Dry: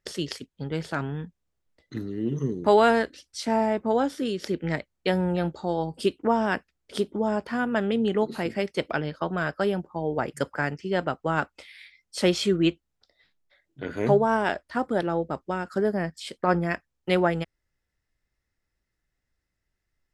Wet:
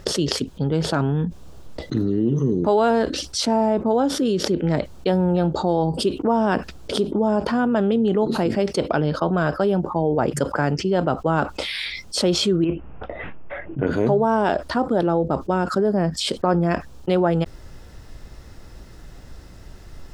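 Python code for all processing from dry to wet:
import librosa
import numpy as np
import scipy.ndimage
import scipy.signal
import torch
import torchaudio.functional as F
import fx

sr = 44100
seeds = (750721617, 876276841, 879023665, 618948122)

y = fx.chain(x, sr, fx.ellip_lowpass(hz=2700.0, order=4, stop_db=40),
    fx.over_compress(threshold_db=-25.0, ratio=-0.5), at=(12.64, 13.87))
y = fx.lowpass(y, sr, hz=3200.0, slope=6)
y = fx.peak_eq(y, sr, hz=2000.0, db=-11.5, octaves=0.83)
y = fx.env_flatten(y, sr, amount_pct=70)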